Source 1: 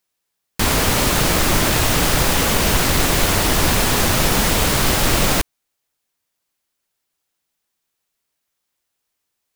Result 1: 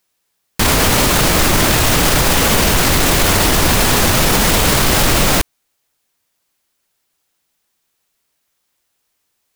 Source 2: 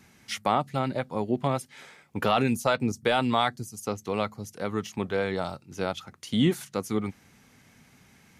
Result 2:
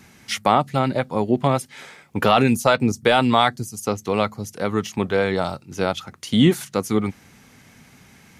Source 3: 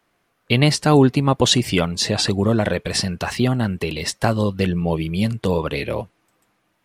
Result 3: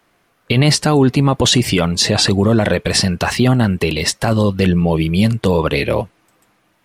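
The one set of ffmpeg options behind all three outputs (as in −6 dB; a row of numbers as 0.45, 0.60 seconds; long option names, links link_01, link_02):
-af "alimiter=limit=-11dB:level=0:latency=1:release=16,volume=7.5dB"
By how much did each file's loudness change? +4.0, +7.5, +4.5 LU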